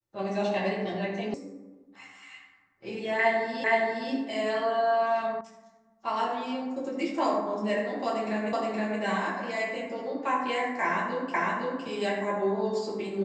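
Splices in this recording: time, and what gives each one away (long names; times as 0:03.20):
0:01.34: cut off before it has died away
0:03.64: the same again, the last 0.47 s
0:05.41: cut off before it has died away
0:08.53: the same again, the last 0.47 s
0:11.34: the same again, the last 0.51 s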